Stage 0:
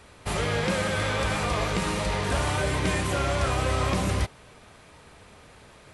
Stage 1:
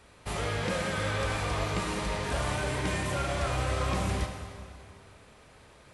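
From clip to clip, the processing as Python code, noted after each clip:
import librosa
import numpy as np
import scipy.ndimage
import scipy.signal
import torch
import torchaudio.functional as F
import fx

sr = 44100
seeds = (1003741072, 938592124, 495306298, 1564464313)

y = fx.rev_plate(x, sr, seeds[0], rt60_s=2.2, hf_ratio=0.85, predelay_ms=0, drr_db=3.5)
y = y * librosa.db_to_amplitude(-6.0)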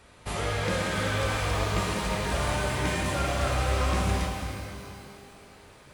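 y = fx.rev_shimmer(x, sr, seeds[1], rt60_s=2.3, semitones=12, shimmer_db=-8, drr_db=5.0)
y = y * librosa.db_to_amplitude(1.5)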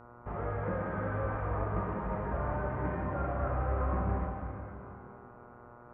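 y = scipy.signal.sosfilt(scipy.signal.cheby2(4, 60, 4800.0, 'lowpass', fs=sr, output='sos'), x)
y = fx.dmg_buzz(y, sr, base_hz=120.0, harmonics=12, level_db=-49.0, tilt_db=-1, odd_only=False)
y = y * librosa.db_to_amplitude(-5.0)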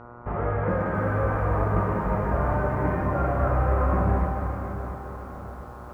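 y = fx.air_absorb(x, sr, metres=73.0)
y = fx.echo_crushed(y, sr, ms=687, feedback_pct=55, bits=10, wet_db=-12.5)
y = y * librosa.db_to_amplitude(9.0)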